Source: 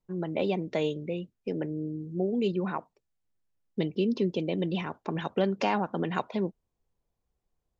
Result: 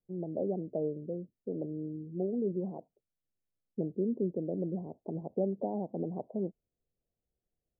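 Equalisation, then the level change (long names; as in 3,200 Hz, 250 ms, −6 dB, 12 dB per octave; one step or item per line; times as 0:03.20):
Butterworth low-pass 710 Hz 48 dB per octave
low-shelf EQ 78 Hz −7 dB
−4.0 dB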